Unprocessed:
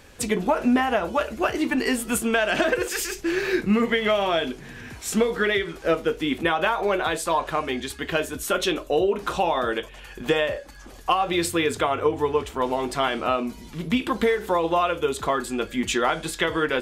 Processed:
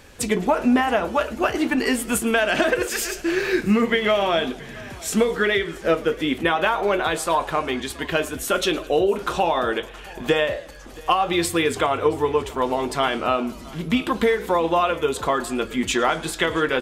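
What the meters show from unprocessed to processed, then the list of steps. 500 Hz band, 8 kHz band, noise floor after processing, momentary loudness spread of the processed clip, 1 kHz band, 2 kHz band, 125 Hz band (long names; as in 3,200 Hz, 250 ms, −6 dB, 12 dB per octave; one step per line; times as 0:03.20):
+2.0 dB, +2.0 dB, −39 dBFS, 6 LU, +2.0 dB, +2.0 dB, +2.0 dB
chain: on a send: single-tap delay 675 ms −22 dB
on the sum: feedback echo with a swinging delay time 110 ms, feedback 55%, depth 180 cents, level −21 dB
level +2 dB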